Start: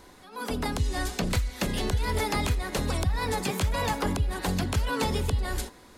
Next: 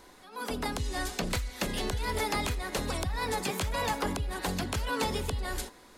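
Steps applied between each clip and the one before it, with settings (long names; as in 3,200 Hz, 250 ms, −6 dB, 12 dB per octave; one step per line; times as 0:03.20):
parametric band 91 Hz −6.5 dB 2.6 octaves
level −1.5 dB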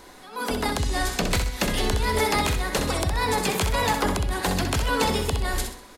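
repeating echo 64 ms, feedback 36%, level −7 dB
level +7 dB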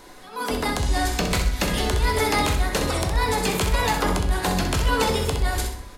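rectangular room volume 82 cubic metres, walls mixed, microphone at 0.41 metres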